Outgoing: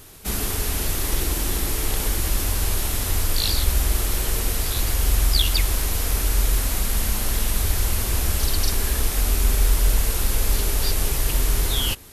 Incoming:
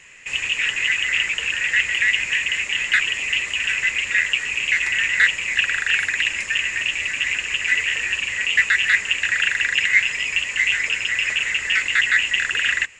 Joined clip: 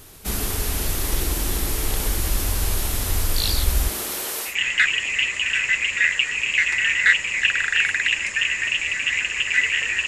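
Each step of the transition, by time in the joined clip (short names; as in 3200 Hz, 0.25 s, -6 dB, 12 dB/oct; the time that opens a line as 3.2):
outgoing
3.88–4.56 HPF 160 Hz -> 700 Hz
4.5 switch to incoming from 2.64 s, crossfade 0.12 s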